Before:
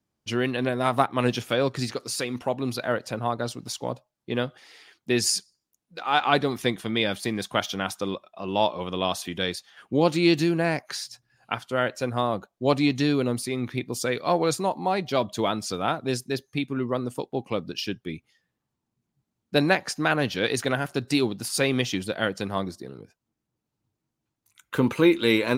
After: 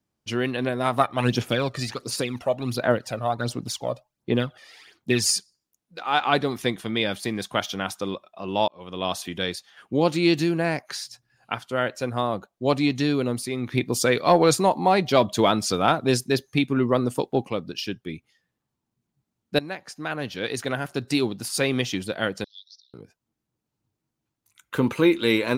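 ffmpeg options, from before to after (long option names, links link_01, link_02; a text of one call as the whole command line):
ffmpeg -i in.wav -filter_complex "[0:a]asplit=3[link_01][link_02][link_03];[link_01]afade=type=out:start_time=1:duration=0.02[link_04];[link_02]aphaser=in_gain=1:out_gain=1:delay=1.7:decay=0.57:speed=1.4:type=sinusoidal,afade=type=in:start_time=1:duration=0.02,afade=type=out:start_time=5.37:duration=0.02[link_05];[link_03]afade=type=in:start_time=5.37:duration=0.02[link_06];[link_04][link_05][link_06]amix=inputs=3:normalize=0,asettb=1/sr,asplit=3[link_07][link_08][link_09];[link_07]atrim=end=13.724[link_10];[link_08]atrim=start=13.72:end=17.49,asetpts=PTS-STARTPTS,afade=type=in:duration=0.004:curve=qsin,afade=type=out:start_time=3.766:duration=0.004:curve=qsin,acontrast=52[link_11];[link_09]atrim=start=17.486[link_12];[link_10][link_11]acrossfade=duration=0.004:curve1=hsin:curve2=qsin[link_13];[link_13][link_12]acrossfade=duration=0.004:curve1=qsin:curve2=hsin,asettb=1/sr,asplit=3[link_14][link_15][link_16];[link_14]atrim=end=22.444[link_17];[link_15]atrim=start=22.44:end=22.94,asetpts=PTS-STARTPTS,afade=type=in:duration=0.004:curve=qsin,afade=type=out:start_time=0.496:duration=0.004:curve=qsin,asuperpass=centerf=4500:order=12:qfactor=1.7[link_18];[link_16]atrim=start=22.936[link_19];[link_17][link_18]acrossfade=duration=0.004:curve1=hsin:curve2=qsin[link_20];[link_20][link_19]acrossfade=duration=0.004:curve1=qsin:curve2=hsin,asplit=3[link_21][link_22][link_23];[link_21]atrim=end=8.68,asetpts=PTS-STARTPTS,afade=type=out:start_time=8.676:duration=0.004:curve=hsin[link_24];[link_22]atrim=start=8.68:end=19.59,asetpts=PTS-STARTPTS,afade=type=in:duration=0.43,afade=type=out:start_time=10.906:duration=0.004:curve=hsin:silence=0.16788[link_25];[link_23]atrim=start=19.59,asetpts=PTS-STARTPTS,afade=type=in:duration=1.51:silence=0.16788[link_26];[link_24][link_25][link_26]concat=n=3:v=0:a=1" out.wav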